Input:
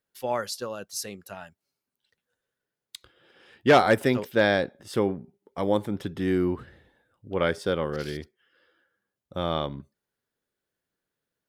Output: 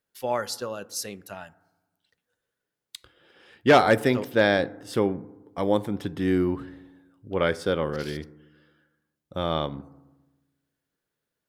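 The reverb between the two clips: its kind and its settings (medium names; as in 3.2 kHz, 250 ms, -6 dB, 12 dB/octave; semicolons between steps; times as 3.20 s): FDN reverb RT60 1.1 s, low-frequency decay 1.3×, high-frequency decay 0.3×, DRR 17.5 dB; trim +1 dB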